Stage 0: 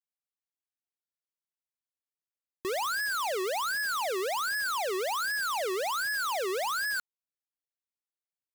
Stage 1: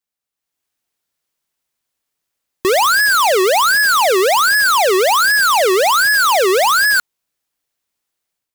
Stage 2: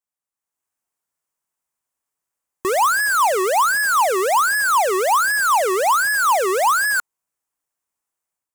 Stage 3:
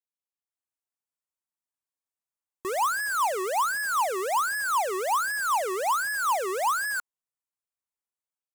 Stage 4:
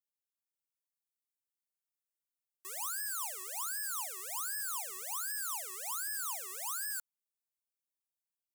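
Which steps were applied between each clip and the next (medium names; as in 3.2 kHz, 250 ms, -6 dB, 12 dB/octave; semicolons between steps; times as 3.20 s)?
level rider gain up to 9.5 dB; trim +8.5 dB
graphic EQ 1/4/8 kHz +7/-8/+6 dB; trim -7.5 dB
upward expansion 1.5:1, over -26 dBFS; trim -8 dB
differentiator; trim -3.5 dB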